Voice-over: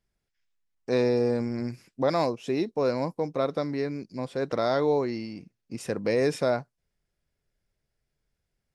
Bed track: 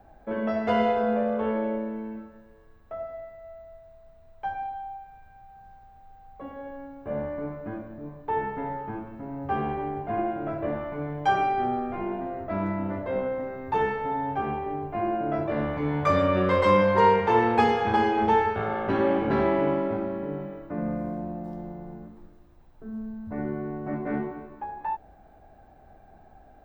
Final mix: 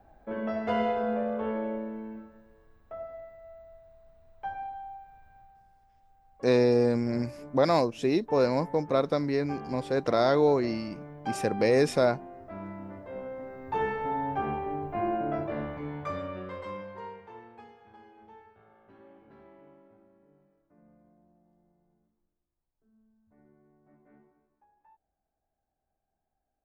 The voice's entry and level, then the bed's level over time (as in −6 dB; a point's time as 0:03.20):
5.55 s, +1.5 dB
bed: 0:05.40 −4.5 dB
0:05.69 −12 dB
0:13.09 −12 dB
0:14.02 −2 dB
0:15.21 −2 dB
0:17.75 −31.5 dB